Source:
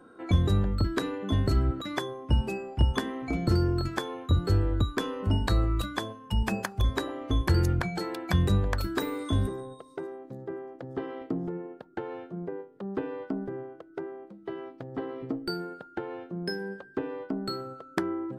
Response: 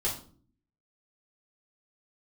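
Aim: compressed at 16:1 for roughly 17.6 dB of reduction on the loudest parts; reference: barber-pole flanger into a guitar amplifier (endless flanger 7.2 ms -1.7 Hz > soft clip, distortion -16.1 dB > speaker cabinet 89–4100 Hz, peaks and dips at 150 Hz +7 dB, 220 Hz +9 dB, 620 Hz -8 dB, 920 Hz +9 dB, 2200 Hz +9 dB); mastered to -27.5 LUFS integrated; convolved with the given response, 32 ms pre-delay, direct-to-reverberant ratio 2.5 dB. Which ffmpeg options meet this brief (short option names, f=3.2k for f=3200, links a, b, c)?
-filter_complex "[0:a]acompressor=threshold=-36dB:ratio=16,asplit=2[a][b];[1:a]atrim=start_sample=2205,adelay=32[c];[b][c]afir=irnorm=-1:irlink=0,volume=-9dB[d];[a][d]amix=inputs=2:normalize=0,asplit=2[e][f];[f]adelay=7.2,afreqshift=-1.7[g];[e][g]amix=inputs=2:normalize=1,asoftclip=threshold=-34.5dB,highpass=89,equalizer=f=150:t=q:w=4:g=7,equalizer=f=220:t=q:w=4:g=9,equalizer=f=620:t=q:w=4:g=-8,equalizer=f=920:t=q:w=4:g=9,equalizer=f=2.2k:t=q:w=4:g=9,lowpass=f=4.1k:w=0.5412,lowpass=f=4.1k:w=1.3066,volume=14.5dB"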